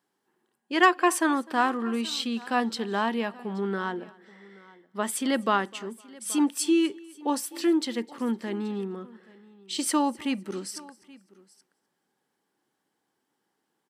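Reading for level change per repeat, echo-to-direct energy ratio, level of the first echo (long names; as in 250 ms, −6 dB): repeats not evenly spaced, −19.5 dB, −24.0 dB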